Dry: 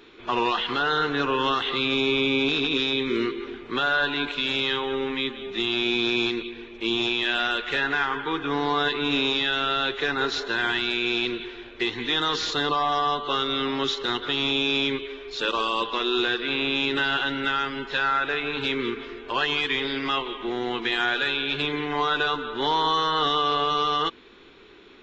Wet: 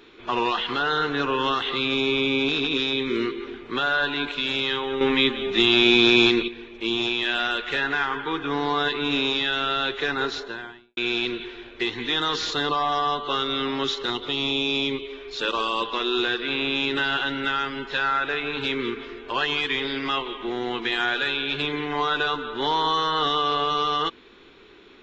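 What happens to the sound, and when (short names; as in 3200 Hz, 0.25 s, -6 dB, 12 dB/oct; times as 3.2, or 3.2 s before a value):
5.01–6.48 gain +7.5 dB
10.15–10.97 studio fade out
14.1–15.13 bell 1600 Hz -14 dB 0.41 oct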